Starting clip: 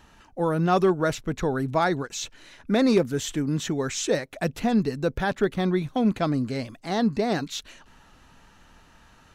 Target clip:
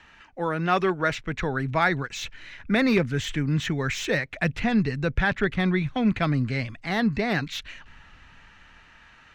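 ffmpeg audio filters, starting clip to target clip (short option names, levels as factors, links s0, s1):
-filter_complex "[0:a]lowpass=7200,equalizer=f=2100:w=0.9:g=14.5,acrossover=split=150|3100[s0][s1][s2];[s0]dynaudnorm=f=300:g=11:m=4.73[s3];[s2]asoftclip=type=hard:threshold=0.0422[s4];[s3][s1][s4]amix=inputs=3:normalize=0,volume=0.562"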